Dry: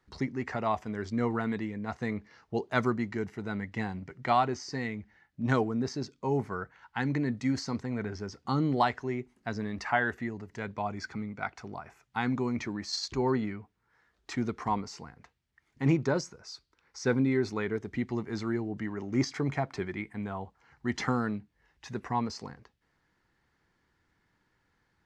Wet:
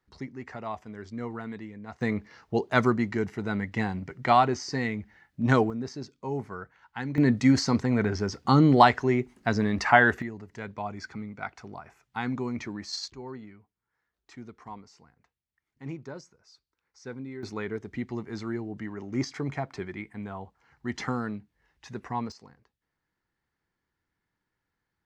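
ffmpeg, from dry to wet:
-af "asetnsamples=n=441:p=0,asendcmd='2.01 volume volume 5dB;5.7 volume volume -3dB;7.18 volume volume 9dB;10.22 volume volume -1dB;13.1 volume volume -12.5dB;17.43 volume volume -1.5dB;22.32 volume volume -10dB',volume=-6dB"

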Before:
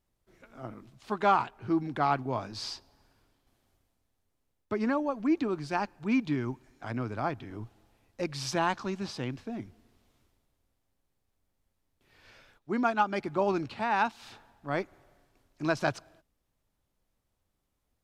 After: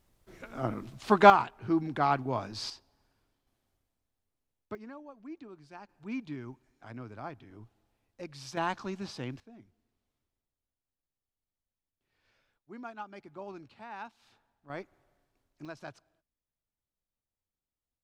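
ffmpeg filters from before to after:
-af "asetnsamples=n=441:p=0,asendcmd='1.3 volume volume 0dB;2.7 volume volume -7dB;4.75 volume volume -18dB;5.89 volume volume -10dB;8.57 volume volume -3.5dB;9.4 volume volume -16dB;14.7 volume volume -9.5dB;15.65 volume volume -16dB',volume=9dB"

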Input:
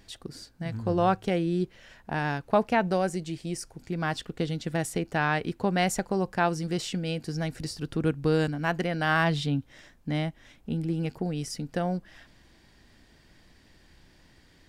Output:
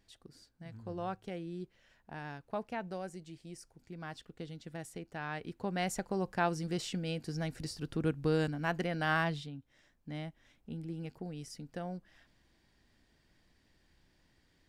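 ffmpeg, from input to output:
-af "volume=1dB,afade=t=in:st=5.2:d=1.18:silence=0.354813,afade=t=out:st=9.14:d=0.38:silence=0.223872,afade=t=in:st=9.52:d=0.75:silence=0.446684"

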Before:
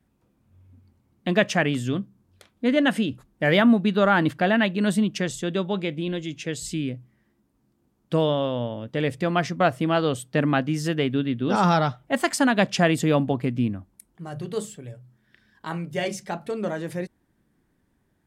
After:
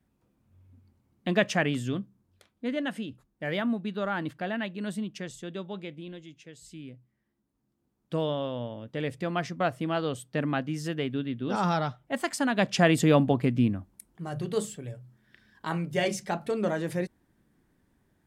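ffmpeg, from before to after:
-af "volume=15dB,afade=t=out:st=1.72:d=1.17:silence=0.421697,afade=t=out:st=5.82:d=0.7:silence=0.421697,afade=t=in:st=6.52:d=1.79:silence=0.251189,afade=t=in:st=12.47:d=0.53:silence=0.446684"

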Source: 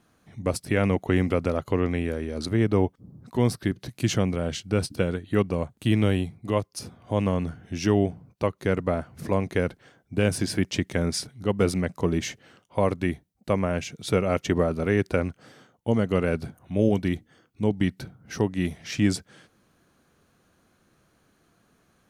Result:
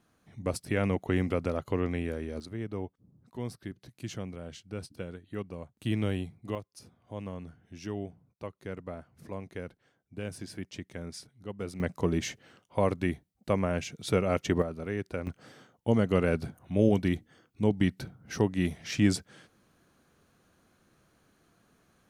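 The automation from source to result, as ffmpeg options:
-af "asetnsamples=n=441:p=0,asendcmd='2.4 volume volume -14.5dB;5.77 volume volume -8dB;6.55 volume volume -15dB;11.8 volume volume -3.5dB;14.62 volume volume -11dB;15.27 volume volume -2dB',volume=-5.5dB"

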